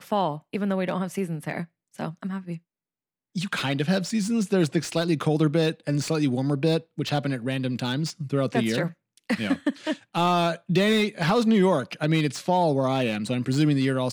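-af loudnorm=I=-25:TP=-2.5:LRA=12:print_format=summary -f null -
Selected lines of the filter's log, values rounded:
Input Integrated:    -24.6 LUFS
Input True Peak:      -8.8 dBTP
Input LRA:             6.9 LU
Input Threshold:     -34.8 LUFS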